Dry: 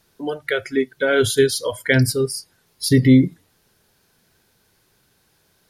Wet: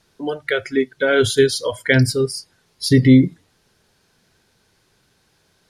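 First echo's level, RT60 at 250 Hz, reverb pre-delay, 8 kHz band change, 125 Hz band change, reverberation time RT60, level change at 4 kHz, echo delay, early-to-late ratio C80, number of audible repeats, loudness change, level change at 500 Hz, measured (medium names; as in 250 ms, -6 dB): no echo, no reverb, no reverb, -1.5 dB, +1.5 dB, no reverb, +1.5 dB, no echo, no reverb, no echo, +1.5 dB, +1.5 dB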